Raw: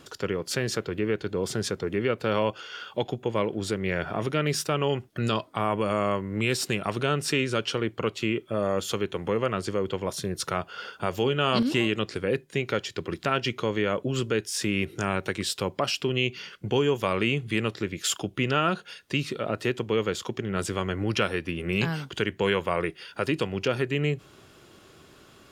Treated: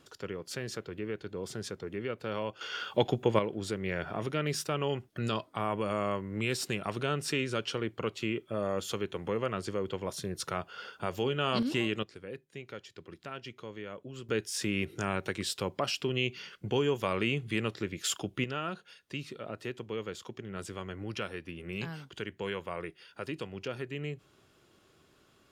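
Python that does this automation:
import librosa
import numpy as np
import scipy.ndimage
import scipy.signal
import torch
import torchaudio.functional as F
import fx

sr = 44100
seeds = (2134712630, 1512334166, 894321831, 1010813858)

y = fx.gain(x, sr, db=fx.steps((0.0, -10.0), (2.61, 1.5), (3.39, -6.0), (12.03, -16.5), (14.29, -5.0), (18.44, -11.5)))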